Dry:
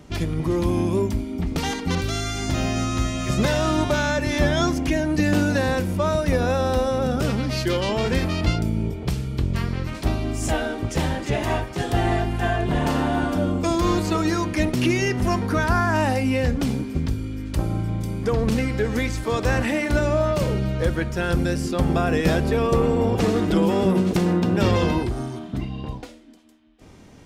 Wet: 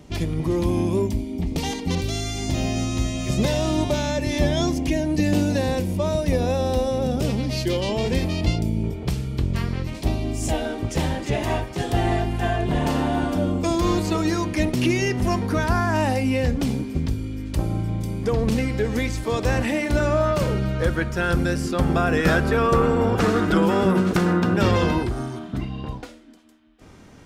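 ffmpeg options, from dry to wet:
ffmpeg -i in.wav -af "asetnsamples=nb_out_samples=441:pad=0,asendcmd='1.07 equalizer g -12.5;8.84 equalizer g -2;9.82 equalizer g -10.5;10.65 equalizer g -4;20 equalizer g 4.5;22.17 equalizer g 11;24.54 equalizer g 4.5',equalizer=frequency=1400:width_type=o:width=0.67:gain=-5" out.wav

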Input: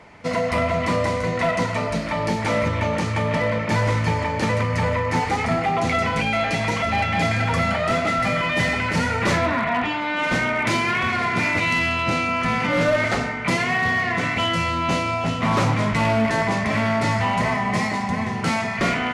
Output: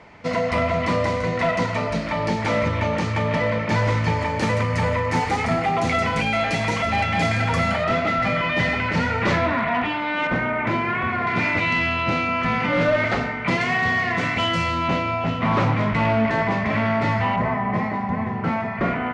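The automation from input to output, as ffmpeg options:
ffmpeg -i in.wav -af "asetnsamples=nb_out_samples=441:pad=0,asendcmd='4.21 lowpass f 10000;7.84 lowpass f 4100;10.27 lowpass f 1900;11.27 lowpass f 3900;13.61 lowpass f 6600;14.88 lowpass f 3100;17.36 lowpass f 1600',lowpass=6100" out.wav

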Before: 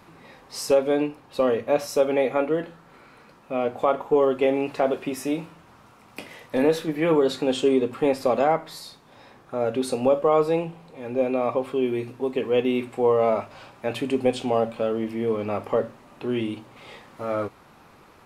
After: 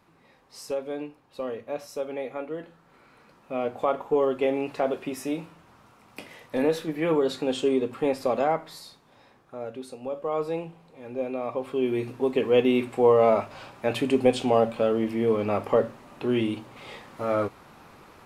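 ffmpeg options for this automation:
ffmpeg -i in.wav -af "volume=14dB,afade=type=in:start_time=2.46:duration=1.06:silence=0.421697,afade=type=out:start_time=8.62:duration=1.37:silence=0.237137,afade=type=in:start_time=9.99:duration=0.48:silence=0.354813,afade=type=in:start_time=11.5:duration=0.65:silence=0.375837" out.wav

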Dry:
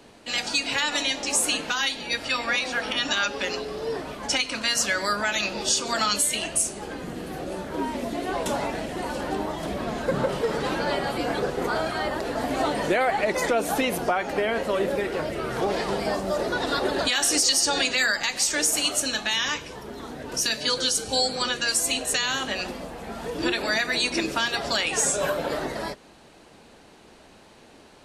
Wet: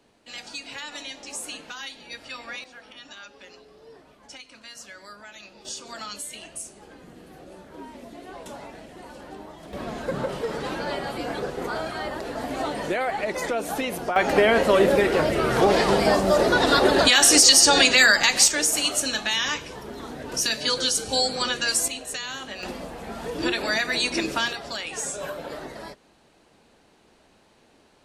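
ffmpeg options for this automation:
ffmpeg -i in.wav -af "asetnsamples=nb_out_samples=441:pad=0,asendcmd='2.64 volume volume -19dB;5.65 volume volume -12.5dB;9.73 volume volume -3.5dB;14.16 volume volume 7dB;18.48 volume volume 0.5dB;21.88 volume volume -7.5dB;22.63 volume volume 0dB;24.53 volume volume -7.5dB',volume=-11.5dB" out.wav

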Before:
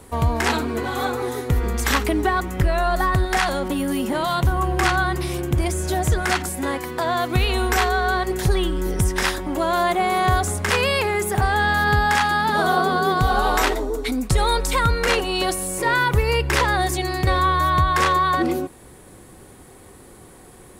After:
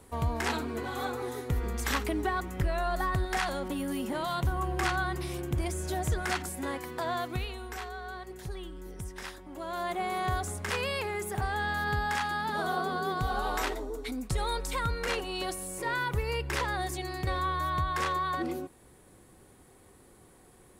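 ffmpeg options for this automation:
ffmpeg -i in.wav -af "volume=-2dB,afade=type=out:start_time=7.14:duration=0.43:silence=0.316228,afade=type=in:start_time=9.49:duration=0.51:silence=0.398107" out.wav

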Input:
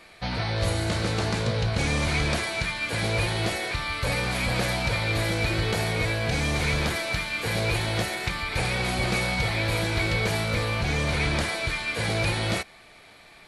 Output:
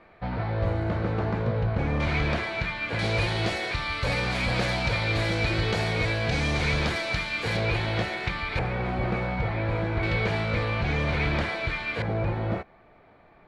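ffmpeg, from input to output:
ffmpeg -i in.wav -af "asetnsamples=nb_out_samples=441:pad=0,asendcmd='2 lowpass f 2800;2.99 lowpass f 5400;7.57 lowpass f 3400;8.59 lowpass f 1500;10.03 lowpass f 2900;12.02 lowpass f 1100',lowpass=1400" out.wav

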